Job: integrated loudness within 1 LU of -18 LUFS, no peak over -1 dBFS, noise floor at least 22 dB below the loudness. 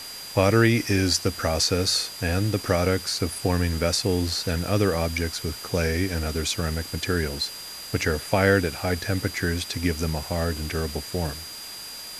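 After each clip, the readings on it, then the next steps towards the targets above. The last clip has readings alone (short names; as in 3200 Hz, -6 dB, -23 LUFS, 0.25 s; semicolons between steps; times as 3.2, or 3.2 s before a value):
steady tone 4800 Hz; tone level -38 dBFS; noise floor -38 dBFS; noise floor target -47 dBFS; loudness -24.5 LUFS; peak -4.5 dBFS; loudness target -18.0 LUFS
-> notch 4800 Hz, Q 30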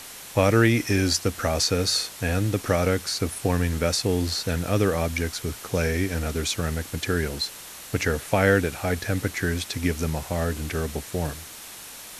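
steady tone none; noise floor -41 dBFS; noise floor target -47 dBFS
-> denoiser 6 dB, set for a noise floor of -41 dBFS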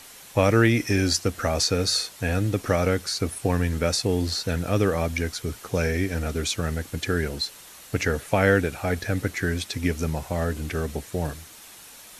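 noise floor -46 dBFS; noise floor target -47 dBFS
-> denoiser 6 dB, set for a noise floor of -46 dBFS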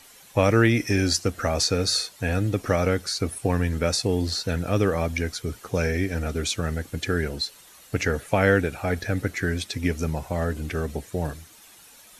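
noise floor -51 dBFS; loudness -25.0 LUFS; peak -5.0 dBFS; loudness target -18.0 LUFS
-> gain +7 dB; limiter -1 dBFS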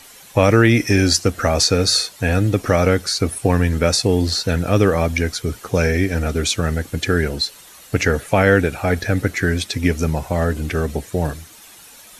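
loudness -18.5 LUFS; peak -1.0 dBFS; noise floor -44 dBFS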